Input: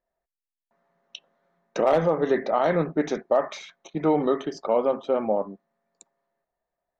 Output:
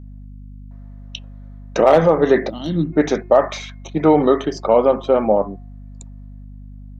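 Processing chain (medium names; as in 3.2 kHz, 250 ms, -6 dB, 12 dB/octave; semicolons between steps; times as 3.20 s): de-hum 356.7 Hz, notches 7; time-frequency box 2.49–2.93 s, 360–2700 Hz -24 dB; hum 50 Hz, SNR 18 dB; trim +8.5 dB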